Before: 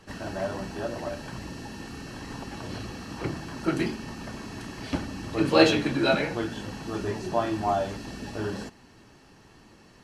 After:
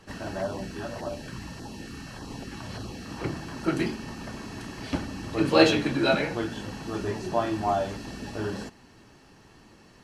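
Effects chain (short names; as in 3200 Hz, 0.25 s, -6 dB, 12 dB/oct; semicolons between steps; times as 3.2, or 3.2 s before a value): 0.42–3.05 LFO notch saw down 1.7 Hz 260–2700 Hz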